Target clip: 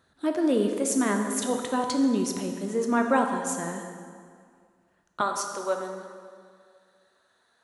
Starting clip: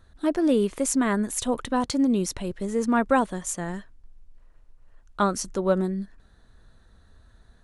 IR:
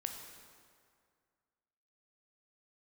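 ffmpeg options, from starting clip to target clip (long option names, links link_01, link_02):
-filter_complex "[0:a]asetnsamples=nb_out_samples=441:pad=0,asendcmd='5.21 highpass f 580',highpass=180[link_01];[1:a]atrim=start_sample=2205[link_02];[link_01][link_02]afir=irnorm=-1:irlink=0"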